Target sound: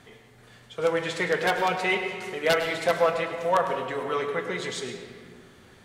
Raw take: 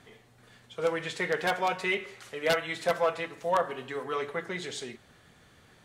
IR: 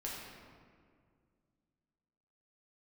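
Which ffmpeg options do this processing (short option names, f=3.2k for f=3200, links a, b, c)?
-filter_complex "[0:a]asplit=2[a][b];[1:a]atrim=start_sample=2205,adelay=103[c];[b][c]afir=irnorm=-1:irlink=0,volume=-7dB[d];[a][d]amix=inputs=2:normalize=0,volume=3.5dB"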